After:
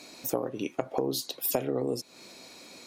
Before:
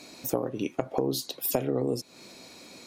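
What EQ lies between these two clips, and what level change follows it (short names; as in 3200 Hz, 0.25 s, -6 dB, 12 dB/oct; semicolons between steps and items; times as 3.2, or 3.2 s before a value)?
low shelf 230 Hz -6.5 dB; 0.0 dB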